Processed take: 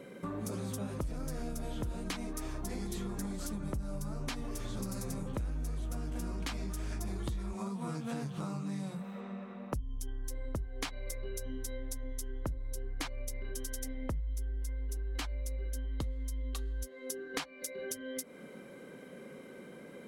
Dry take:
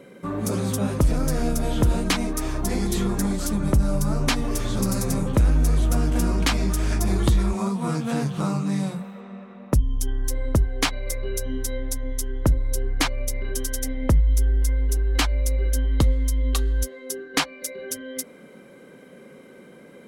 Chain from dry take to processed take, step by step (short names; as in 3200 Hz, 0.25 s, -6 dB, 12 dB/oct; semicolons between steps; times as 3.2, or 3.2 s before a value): compressor 4:1, threshold -34 dBFS, peak gain reduction 16 dB; gain -3 dB